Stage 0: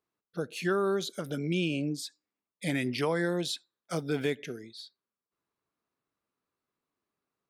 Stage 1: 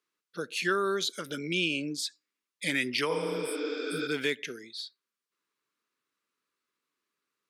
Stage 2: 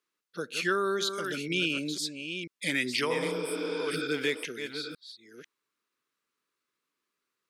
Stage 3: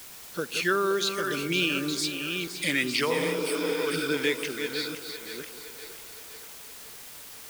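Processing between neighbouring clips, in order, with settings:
meter weighting curve A; healed spectral selection 0:03.13–0:04.05, 230–7,700 Hz both; parametric band 730 Hz −15 dB 0.72 octaves; level +6 dB
delay that plays each chunk backwards 495 ms, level −8 dB
camcorder AGC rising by 5.7 dB per second; in parallel at −9 dB: bit-depth reduction 6 bits, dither triangular; on the sum: echo with a time of its own for lows and highs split 400 Hz, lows 174 ms, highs 516 ms, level −11 dB

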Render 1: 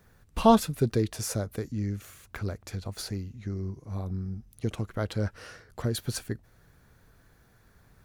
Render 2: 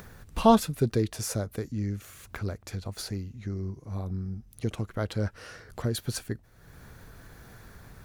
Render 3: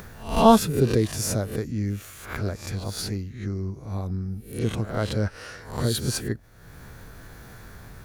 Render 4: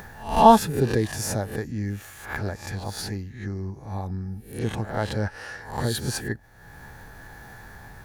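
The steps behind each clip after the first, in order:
upward compression, threshold −37 dBFS
peak hold with a rise ahead of every peak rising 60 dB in 0.46 s; level +3.5 dB
hollow resonant body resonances 840/1,700 Hz, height 13 dB, ringing for 25 ms; level −2 dB

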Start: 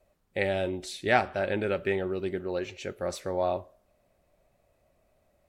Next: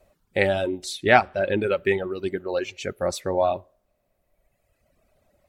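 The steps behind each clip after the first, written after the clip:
reverb reduction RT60 1.9 s
level +7.5 dB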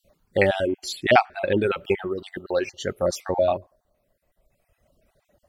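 time-frequency cells dropped at random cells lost 31%
level +2.5 dB

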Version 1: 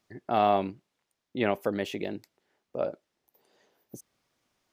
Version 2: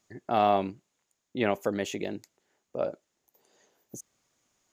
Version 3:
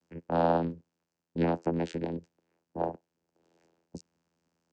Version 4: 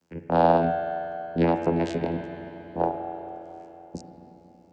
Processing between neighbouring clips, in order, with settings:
parametric band 6,800 Hz +13.5 dB 0.3 octaves
channel vocoder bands 8, saw 83.9 Hz
spring reverb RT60 3.6 s, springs 33/46 ms, chirp 50 ms, DRR 4.5 dB; level +6 dB

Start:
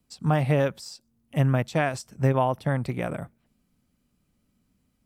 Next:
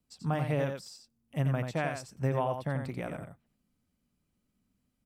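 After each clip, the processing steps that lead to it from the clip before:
single-tap delay 88 ms −6.5 dB
level −8 dB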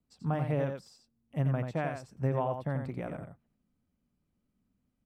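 high-shelf EQ 2,300 Hz −11 dB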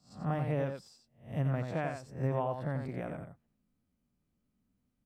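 peak hold with a rise ahead of every peak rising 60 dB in 0.38 s
level −2.5 dB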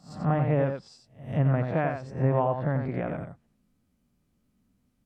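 treble cut that deepens with the level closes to 2,300 Hz, closed at −32.5 dBFS
echo ahead of the sound 181 ms −23 dB
level +8 dB

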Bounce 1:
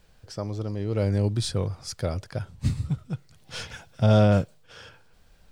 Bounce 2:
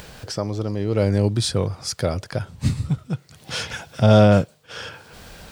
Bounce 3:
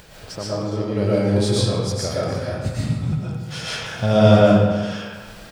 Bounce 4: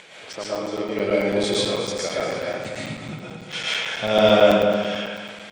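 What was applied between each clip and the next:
high-pass filter 110 Hz 6 dB per octave; in parallel at +1.5 dB: upward compression, threshold −27 dBFS
single-tap delay 295 ms −16 dB; convolution reverb RT60 1.3 s, pre-delay 80 ms, DRR −7.5 dB; level −6 dB
loudspeaker in its box 300–8,800 Hz, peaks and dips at 2,200 Hz +10 dB, 3,300 Hz +6 dB, 5,000 Hz −5 dB; repeating echo 242 ms, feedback 37%, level −11.5 dB; regular buffer underruns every 0.11 s, samples 256, zero, from 0:00.33

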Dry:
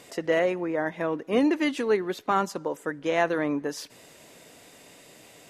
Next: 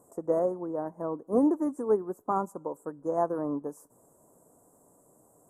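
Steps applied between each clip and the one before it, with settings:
elliptic band-stop filter 1,100–8,000 Hz, stop band 60 dB
expander for the loud parts 1.5 to 1, over −35 dBFS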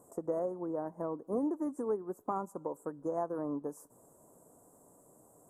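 downward compressor 2.5 to 1, threshold −34 dBFS, peak gain reduction 10 dB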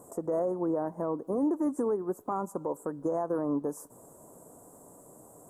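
brickwall limiter −30 dBFS, peak gain reduction 8 dB
level +8.5 dB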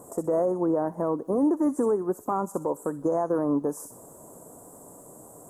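delay with a high-pass on its return 62 ms, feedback 36%, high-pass 3,800 Hz, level −4 dB
level +5 dB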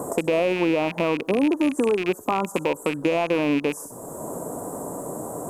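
loose part that buzzes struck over −38 dBFS, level −23 dBFS
multiband upward and downward compressor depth 70%
level +3 dB

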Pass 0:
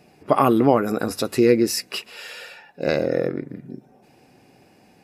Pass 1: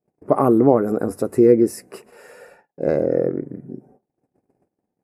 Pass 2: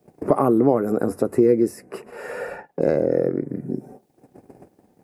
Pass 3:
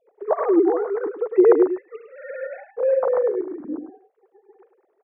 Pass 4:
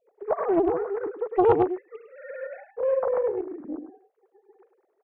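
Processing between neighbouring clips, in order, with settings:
drawn EQ curve 240 Hz 0 dB, 420 Hz +3 dB, 2,000 Hz −11 dB, 3,300 Hz −28 dB, 9,400 Hz −5 dB, 14,000 Hz −12 dB; noise gate −50 dBFS, range −31 dB; level +1.5 dB
multiband upward and downward compressor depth 70%; level −1.5 dB
three sine waves on the formant tracks; on a send: single-tap delay 104 ms −9 dB
highs frequency-modulated by the lows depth 0.54 ms; level −4.5 dB

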